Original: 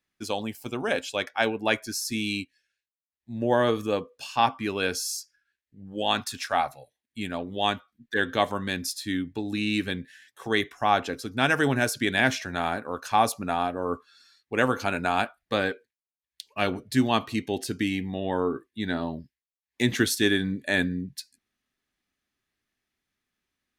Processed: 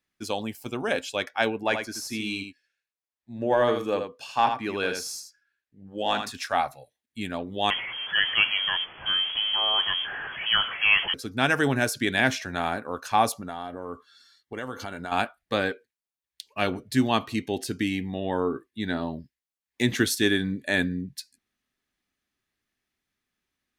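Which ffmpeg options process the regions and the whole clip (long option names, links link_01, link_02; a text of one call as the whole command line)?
ffmpeg -i in.wav -filter_complex "[0:a]asettb=1/sr,asplit=3[link_01][link_02][link_03];[link_01]atrim=end=1.634[link_04];[link_02]atrim=start=1.63:end=6.35,asetpts=PTS-STARTPTS,afade=type=in:duration=0.004:curve=qsin,afade=type=out:start_time=4.716:duration=0.004:curve=qsin,highshelf=frequency=4800:gain=9.5,asplit=2[link_05][link_06];[link_06]highpass=frequency=720:poles=1,volume=8dB,asoftclip=type=tanh:threshold=-6.5dB[link_07];[link_05][link_07]amix=inputs=2:normalize=0,lowpass=frequency=1100:poles=1,volume=-6dB,aecho=1:1:81:0.447,atrim=end_sample=208152[link_08];[link_03]atrim=start=6.346[link_09];[link_04][link_08]acrossfade=duration=0.004:curve1=hsin:curve2=qsin[link_10];[link_10][link_09]acrossfade=duration=0.004:curve1=qsin:curve2=hsin,asettb=1/sr,asplit=3[link_11][link_12][link_13];[link_11]atrim=end=7.704[link_14];[link_12]atrim=start=7.7:end=11.14,asetpts=PTS-STARTPTS,afade=type=in:duration=0.004:curve=qsin,afade=type=out:start_time=3.436:duration=0.004:curve=qsin,aeval=exprs='val(0)+0.5*0.0422*sgn(val(0))':channel_layout=same,lowpass=frequency=2900:width_type=q:width=0.5098,lowpass=frequency=2900:width_type=q:width=0.6013,lowpass=frequency=2900:width_type=q:width=0.9,lowpass=frequency=2900:width_type=q:width=2.563,afreqshift=-3400[link_15];[link_13]atrim=start=11.136[link_16];[link_14][link_15]acrossfade=duration=0.004:curve1=hsin:curve2=qsin[link_17];[link_17][link_16]acrossfade=duration=0.004:curve1=qsin:curve2=hsin,asettb=1/sr,asplit=3[link_18][link_19][link_20];[link_18]atrim=end=13.334[link_21];[link_19]atrim=start=13.33:end=15.12,asetpts=PTS-STARTPTS,afade=type=in:duration=0.004:curve=qsin,afade=type=out:start_time=1.786:duration=0.004:curve=qsin,equalizer=frequency=3300:width=7.1:gain=4,acompressor=threshold=-33dB:ratio=3:attack=3.2:release=140:knee=1:detection=peak,asuperstop=centerf=2500:order=8:qfactor=7.8[link_22];[link_20]atrim=start=15.116[link_23];[link_21][link_22]acrossfade=duration=0.004:curve1=hsin:curve2=qsin[link_24];[link_24][link_23]acrossfade=duration=0.004:curve1=qsin:curve2=hsin" out.wav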